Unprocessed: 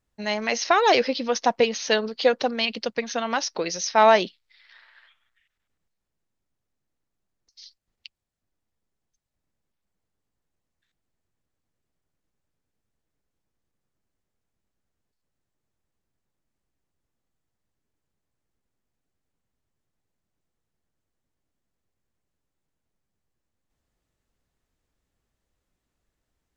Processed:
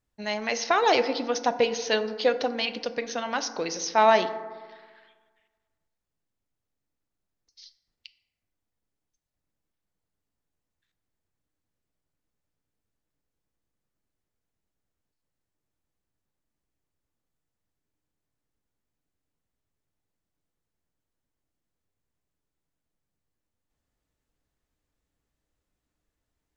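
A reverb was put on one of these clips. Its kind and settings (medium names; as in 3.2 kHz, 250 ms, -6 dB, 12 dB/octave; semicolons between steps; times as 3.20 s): FDN reverb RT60 1.5 s, low-frequency decay 1.05×, high-frequency decay 0.35×, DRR 10 dB; trim -3.5 dB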